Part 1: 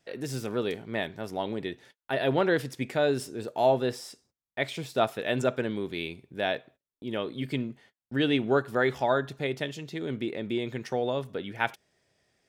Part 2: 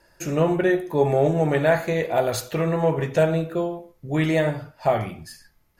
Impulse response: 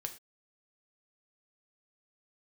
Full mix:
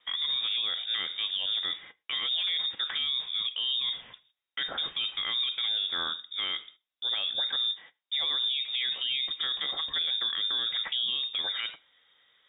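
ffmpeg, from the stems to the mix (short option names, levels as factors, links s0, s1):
-filter_complex "[0:a]acontrast=73,volume=0.891,asplit=3[s0][s1][s2];[s1]volume=0.316[s3];[1:a]asoftclip=type=tanh:threshold=0.075,highpass=1200,volume=0.119[s4];[s2]apad=whole_len=255685[s5];[s4][s5]sidechaingate=range=0.00708:threshold=0.00708:ratio=16:detection=peak[s6];[2:a]atrim=start_sample=2205[s7];[s3][s7]afir=irnorm=-1:irlink=0[s8];[s0][s6][s8]amix=inputs=3:normalize=0,acrossover=split=250[s9][s10];[s10]acompressor=threshold=0.0631:ratio=6[s11];[s9][s11]amix=inputs=2:normalize=0,lowpass=f=3200:t=q:w=0.5098,lowpass=f=3200:t=q:w=0.6013,lowpass=f=3200:t=q:w=0.9,lowpass=f=3200:t=q:w=2.563,afreqshift=-3800,alimiter=limit=0.0794:level=0:latency=1:release=33"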